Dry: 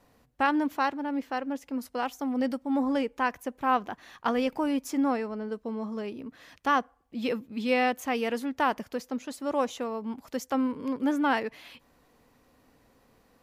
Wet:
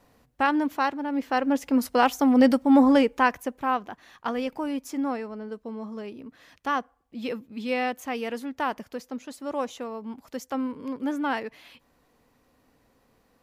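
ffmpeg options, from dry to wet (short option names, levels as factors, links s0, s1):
-af "volume=3.35,afade=t=in:st=1.11:d=0.53:silence=0.375837,afade=t=out:st=2.7:d=1.08:silence=0.237137"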